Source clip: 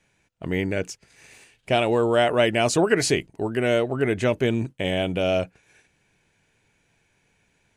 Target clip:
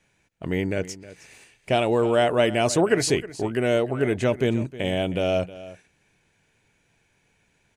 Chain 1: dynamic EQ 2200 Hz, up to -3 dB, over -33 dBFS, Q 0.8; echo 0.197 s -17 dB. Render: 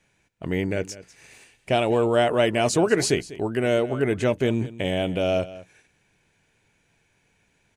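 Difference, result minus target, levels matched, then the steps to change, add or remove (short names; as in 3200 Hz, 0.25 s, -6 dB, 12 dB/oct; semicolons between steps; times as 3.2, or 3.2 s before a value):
echo 0.117 s early
change: echo 0.314 s -17 dB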